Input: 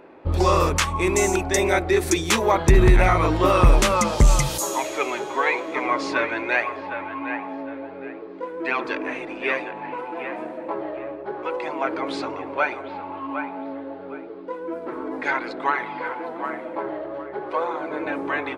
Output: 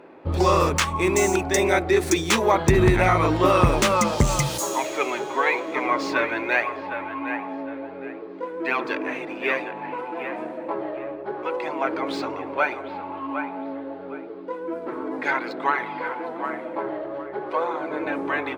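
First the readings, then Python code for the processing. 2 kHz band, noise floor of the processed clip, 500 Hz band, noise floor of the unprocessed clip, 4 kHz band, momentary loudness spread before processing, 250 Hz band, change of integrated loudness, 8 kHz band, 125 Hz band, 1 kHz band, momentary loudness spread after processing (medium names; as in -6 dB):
0.0 dB, -36 dBFS, +0.5 dB, -37 dBFS, -0.5 dB, 15 LU, +0.5 dB, -0.5 dB, -1.5 dB, -2.0 dB, 0.0 dB, 14 LU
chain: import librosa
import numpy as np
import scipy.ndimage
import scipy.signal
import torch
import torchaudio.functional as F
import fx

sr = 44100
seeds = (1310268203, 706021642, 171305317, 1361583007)

y = scipy.ndimage.median_filter(x, 3, mode='constant')
y = scipy.signal.sosfilt(scipy.signal.butter(2, 96.0, 'highpass', fs=sr, output='sos'), y)
y = fx.low_shelf(y, sr, hz=150.0, db=3.0)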